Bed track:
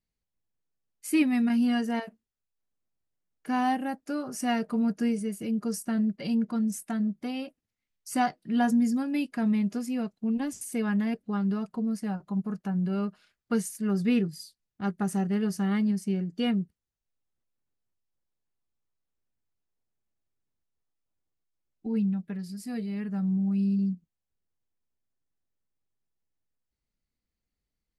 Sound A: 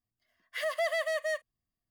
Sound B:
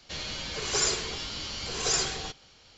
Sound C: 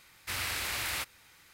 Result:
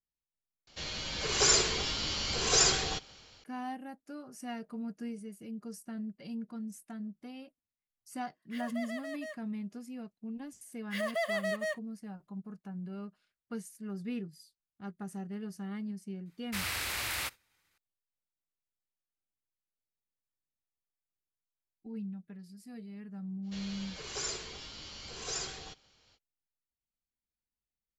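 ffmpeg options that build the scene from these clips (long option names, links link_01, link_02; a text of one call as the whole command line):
ffmpeg -i bed.wav -i cue0.wav -i cue1.wav -i cue2.wav -filter_complex "[2:a]asplit=2[link_01][link_02];[1:a]asplit=2[link_03][link_04];[0:a]volume=-13dB[link_05];[link_01]dynaudnorm=framelen=360:gausssize=3:maxgain=5.5dB[link_06];[3:a]agate=range=-33dB:threshold=-50dB:ratio=3:release=100:detection=peak[link_07];[link_05]asplit=2[link_08][link_09];[link_08]atrim=end=0.674[link_10];[link_06]atrim=end=2.77,asetpts=PTS-STARTPTS,volume=-3.5dB[link_11];[link_09]atrim=start=3.436[link_12];[link_03]atrim=end=1.9,asetpts=PTS-STARTPTS,volume=-11.5dB,afade=type=in:duration=0.004:curve=hsin,afade=type=out:start_time=1.896:duration=0.004:curve=hsin,adelay=7970[link_13];[link_04]atrim=end=1.9,asetpts=PTS-STARTPTS,volume=-2.5dB,afade=type=in:duration=0.004:curve=hsin,afade=type=out:start_time=1.896:duration=0.004:curve=hsin,adelay=10370[link_14];[link_07]atrim=end=1.53,asetpts=PTS-STARTPTS,volume=-1dB,afade=type=in:duration=0.004:curve=hsin,afade=type=out:start_time=1.526:duration=0.004:curve=hsin,adelay=16250[link_15];[link_02]atrim=end=2.77,asetpts=PTS-STARTPTS,volume=-10.5dB,afade=type=in:duration=0.05,afade=type=out:start_time=2.72:duration=0.05,adelay=23420[link_16];[link_10][link_11]acrossfade=duration=0.004:curve1=hsin:curve2=hsin[link_17];[link_17][link_12]acrossfade=duration=0.004:curve1=hsin:curve2=hsin[link_18];[link_18][link_13][link_14][link_15][link_16]amix=inputs=5:normalize=0" out.wav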